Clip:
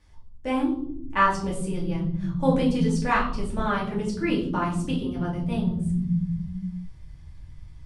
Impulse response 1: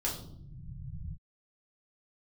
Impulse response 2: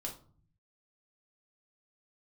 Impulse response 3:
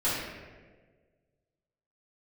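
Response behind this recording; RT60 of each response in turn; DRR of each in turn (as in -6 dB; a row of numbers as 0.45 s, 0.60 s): 1; no single decay rate, 0.45 s, 1.5 s; -5.5 dB, -1.0 dB, -12.0 dB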